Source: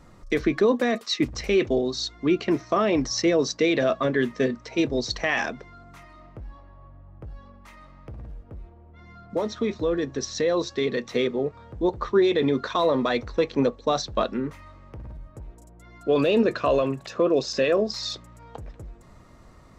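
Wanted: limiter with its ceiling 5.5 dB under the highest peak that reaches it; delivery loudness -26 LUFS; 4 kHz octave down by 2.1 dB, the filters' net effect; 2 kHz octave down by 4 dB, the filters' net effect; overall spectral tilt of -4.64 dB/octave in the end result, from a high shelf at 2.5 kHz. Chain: peaking EQ 2 kHz -6 dB; treble shelf 2.5 kHz +6 dB; peaking EQ 4 kHz -6.5 dB; trim +1 dB; peak limiter -15 dBFS

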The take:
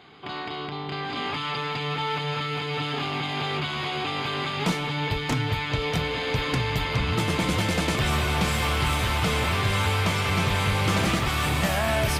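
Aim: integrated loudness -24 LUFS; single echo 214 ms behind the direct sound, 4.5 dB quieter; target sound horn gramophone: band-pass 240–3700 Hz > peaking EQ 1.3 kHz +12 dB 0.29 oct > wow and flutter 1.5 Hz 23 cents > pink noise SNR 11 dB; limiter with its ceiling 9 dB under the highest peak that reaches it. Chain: peak limiter -22.5 dBFS; band-pass 240–3700 Hz; peaking EQ 1.3 kHz +12 dB 0.29 oct; delay 214 ms -4.5 dB; wow and flutter 1.5 Hz 23 cents; pink noise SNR 11 dB; trim +3.5 dB

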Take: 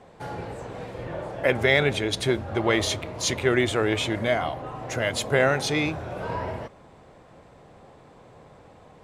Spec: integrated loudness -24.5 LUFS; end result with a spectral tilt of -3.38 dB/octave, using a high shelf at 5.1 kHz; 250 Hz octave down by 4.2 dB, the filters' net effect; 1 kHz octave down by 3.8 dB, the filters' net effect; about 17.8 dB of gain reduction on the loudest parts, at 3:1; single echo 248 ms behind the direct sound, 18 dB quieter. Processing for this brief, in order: peaking EQ 250 Hz -6 dB; peaking EQ 1 kHz -5.5 dB; treble shelf 5.1 kHz +7 dB; compression 3:1, threshold -43 dBFS; delay 248 ms -18 dB; trim +16.5 dB

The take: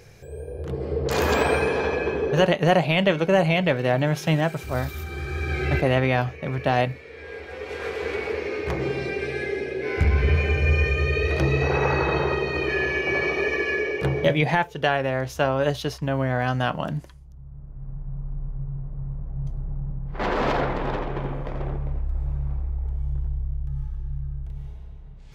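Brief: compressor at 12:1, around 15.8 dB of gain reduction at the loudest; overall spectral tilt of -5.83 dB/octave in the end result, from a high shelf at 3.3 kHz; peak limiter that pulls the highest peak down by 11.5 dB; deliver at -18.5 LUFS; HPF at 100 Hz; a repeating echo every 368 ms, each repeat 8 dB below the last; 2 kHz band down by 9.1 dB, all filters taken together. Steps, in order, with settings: high-pass 100 Hz; peaking EQ 2 kHz -8.5 dB; treble shelf 3.3 kHz -9 dB; compression 12:1, threshold -31 dBFS; peak limiter -31 dBFS; feedback delay 368 ms, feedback 40%, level -8 dB; trim +20.5 dB

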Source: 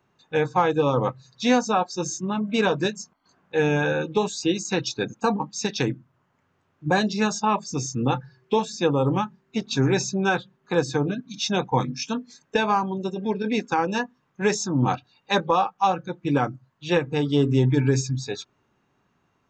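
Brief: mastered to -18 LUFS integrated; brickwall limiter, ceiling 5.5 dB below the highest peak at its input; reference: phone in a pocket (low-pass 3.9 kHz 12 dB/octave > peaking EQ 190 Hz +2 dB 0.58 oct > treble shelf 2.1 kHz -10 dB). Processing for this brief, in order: peak limiter -15 dBFS; low-pass 3.9 kHz 12 dB/octave; peaking EQ 190 Hz +2 dB 0.58 oct; treble shelf 2.1 kHz -10 dB; trim +9.5 dB

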